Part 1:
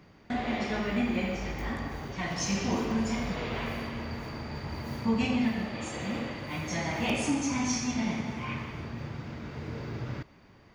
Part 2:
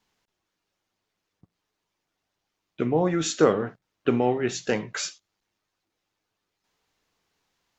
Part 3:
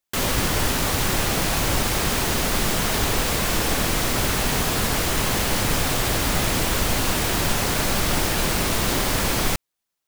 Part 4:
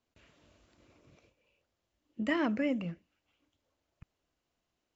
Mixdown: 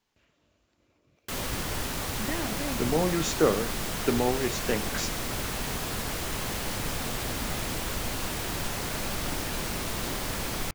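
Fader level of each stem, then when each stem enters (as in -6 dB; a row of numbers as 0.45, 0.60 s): -18.0, -3.5, -10.0, -5.0 dB; 1.95, 0.00, 1.15, 0.00 s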